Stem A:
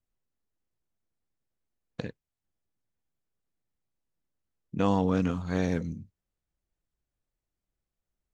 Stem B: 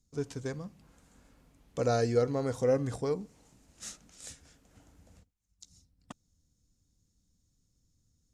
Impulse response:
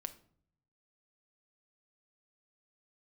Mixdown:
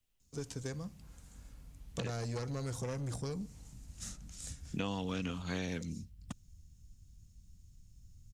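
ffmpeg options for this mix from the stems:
-filter_complex "[0:a]equalizer=f=2900:t=o:w=0.73:g=9,volume=0.944,asplit=3[s0][s1][s2];[s0]atrim=end=3.43,asetpts=PTS-STARTPTS,afade=t=out:st=3.426:d=0.004:c=hsin[s3];[s1]atrim=start=3.43:end=4.46,asetpts=PTS-STARTPTS,volume=0[s4];[s2]atrim=start=4.46,asetpts=PTS-STARTPTS,afade=t=in:d=0.004:c=hsin[s5];[s3][s4][s5]concat=n=3:v=0:a=1[s6];[1:a]asubboost=boost=7:cutoff=160,asoftclip=type=tanh:threshold=0.0473,adelay=200,volume=0.794[s7];[s6][s7]amix=inputs=2:normalize=0,highshelf=f=3400:g=9,acrossover=split=180|1600[s8][s9][s10];[s8]acompressor=threshold=0.00447:ratio=4[s11];[s9]acompressor=threshold=0.01:ratio=4[s12];[s10]acompressor=threshold=0.00562:ratio=4[s13];[s11][s12][s13]amix=inputs=3:normalize=0,lowshelf=f=190:g=4"

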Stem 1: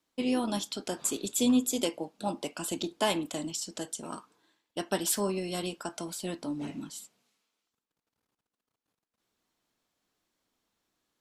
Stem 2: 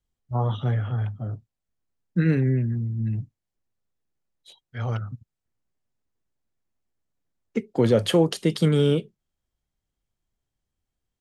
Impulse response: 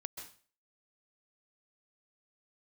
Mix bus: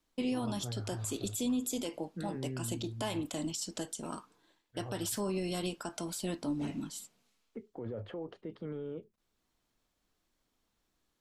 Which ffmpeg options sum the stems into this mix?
-filter_complex "[0:a]volume=0.891[s0];[1:a]lowpass=1300,equalizer=f=150:w=1.5:g=-12.5,alimiter=limit=0.0841:level=0:latency=1:release=24,volume=0.237,asplit=2[s1][s2];[s2]apad=whole_len=494045[s3];[s0][s3]sidechaincompress=threshold=0.00794:ratio=4:attack=38:release=976[s4];[s4][s1]amix=inputs=2:normalize=0,lowshelf=f=110:g=10.5,alimiter=level_in=1.19:limit=0.0631:level=0:latency=1:release=85,volume=0.841"

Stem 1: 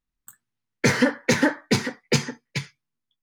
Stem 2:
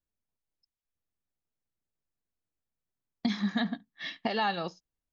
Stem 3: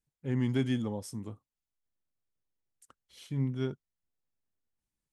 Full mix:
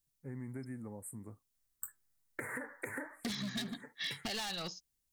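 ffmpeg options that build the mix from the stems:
-filter_complex "[0:a]equalizer=f=190:t=o:w=0.67:g=-13.5,acompressor=threshold=0.0794:ratio=6,flanger=delay=2.8:depth=9.1:regen=57:speed=1.2:shape=triangular,adelay=1550,volume=1[s0];[1:a]volume=31.6,asoftclip=hard,volume=0.0316,equalizer=f=620:w=0.34:g=-7.5,volume=1.33[s1];[2:a]volume=0.422,asplit=2[s2][s3];[s3]apad=whole_len=210434[s4];[s0][s4]sidechaincompress=threshold=0.00141:ratio=8:attack=16:release=266[s5];[s5][s2]amix=inputs=2:normalize=0,asuperstop=centerf=4200:order=12:qfactor=0.72,acompressor=threshold=0.00794:ratio=3,volume=1[s6];[s1][s6]amix=inputs=2:normalize=0,highshelf=f=3400:g=11,acompressor=threshold=0.0158:ratio=5"

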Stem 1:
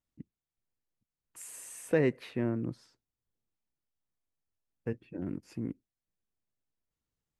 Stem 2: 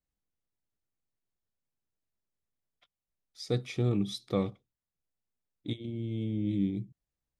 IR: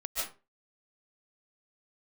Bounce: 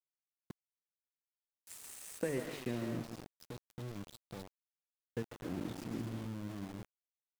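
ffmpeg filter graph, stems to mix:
-filter_complex "[0:a]bandreject=f=50:t=h:w=6,bandreject=f=100:t=h:w=6,bandreject=f=150:t=h:w=6,bandreject=f=200:t=h:w=6,bandreject=f=250:t=h:w=6,bandreject=f=300:t=h:w=6,bandreject=f=350:t=h:w=6,acompressor=threshold=0.0251:ratio=5,adelay=300,volume=0.631,asplit=3[s0][s1][s2];[s1]volume=0.473[s3];[s2]volume=0.376[s4];[1:a]bass=f=250:g=5,treble=f=4000:g=0,acompressor=threshold=0.0224:ratio=1.5,alimiter=level_in=1.26:limit=0.0631:level=0:latency=1:release=328,volume=0.794,volume=0.335,asplit=2[s5][s6];[s6]volume=0.282[s7];[2:a]atrim=start_sample=2205[s8];[s3][s8]afir=irnorm=-1:irlink=0[s9];[s4][s7]amix=inputs=2:normalize=0,aecho=0:1:251|502|753|1004|1255:1|0.36|0.13|0.0467|0.0168[s10];[s0][s5][s9][s10]amix=inputs=4:normalize=0,aeval=exprs='val(0)*gte(abs(val(0)),0.00668)':c=same"

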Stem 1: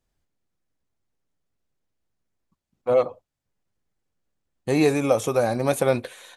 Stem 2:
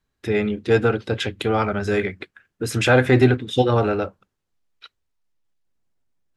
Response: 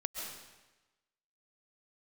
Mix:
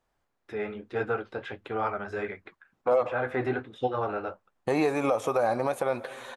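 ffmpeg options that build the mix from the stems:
-filter_complex "[0:a]volume=0.531,asplit=2[s0][s1];[s1]volume=0.106[s2];[1:a]acrossover=split=2800[s3][s4];[s4]acompressor=threshold=0.0141:ratio=4:attack=1:release=60[s5];[s3][s5]amix=inputs=2:normalize=0,flanger=delay=7.2:depth=7.1:regen=-43:speed=1.4:shape=triangular,adelay=250,volume=0.168[s6];[2:a]atrim=start_sample=2205[s7];[s2][s7]afir=irnorm=-1:irlink=0[s8];[s0][s6][s8]amix=inputs=3:normalize=0,equalizer=f=980:w=0.47:g=14.5,alimiter=limit=0.178:level=0:latency=1:release=435"

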